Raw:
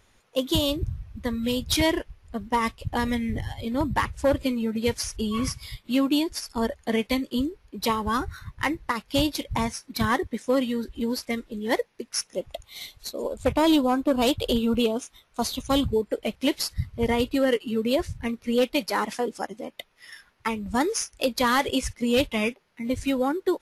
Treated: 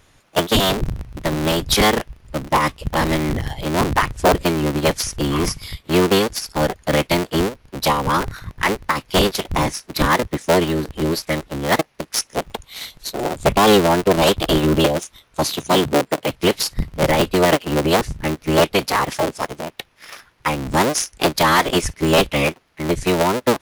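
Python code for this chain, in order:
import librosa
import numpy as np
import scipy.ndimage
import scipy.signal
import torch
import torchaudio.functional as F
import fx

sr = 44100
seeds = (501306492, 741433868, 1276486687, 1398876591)

y = fx.cycle_switch(x, sr, every=3, mode='inverted')
y = fx.highpass(y, sr, hz=140.0, slope=12, at=(15.44, 16.3))
y = y * librosa.db_to_amplitude(7.0)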